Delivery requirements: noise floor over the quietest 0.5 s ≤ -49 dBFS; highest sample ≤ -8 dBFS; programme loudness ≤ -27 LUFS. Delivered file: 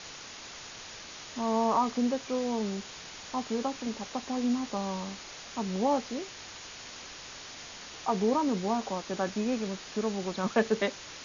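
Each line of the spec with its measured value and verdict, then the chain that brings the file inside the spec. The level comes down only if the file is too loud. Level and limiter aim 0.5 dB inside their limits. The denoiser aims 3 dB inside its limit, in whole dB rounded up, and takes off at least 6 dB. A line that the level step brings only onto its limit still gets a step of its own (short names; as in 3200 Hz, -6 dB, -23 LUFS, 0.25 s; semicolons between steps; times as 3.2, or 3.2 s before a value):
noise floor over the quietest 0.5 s -45 dBFS: fail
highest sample -13.5 dBFS: OK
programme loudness -31.5 LUFS: OK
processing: denoiser 7 dB, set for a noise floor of -45 dBFS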